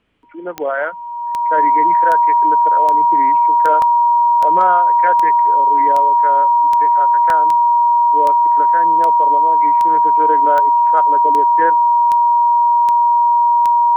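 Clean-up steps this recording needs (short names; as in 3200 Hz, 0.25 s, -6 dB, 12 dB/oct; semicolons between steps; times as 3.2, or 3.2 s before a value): de-click; notch 950 Hz, Q 30; interpolate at 3.82/7.3, 1.8 ms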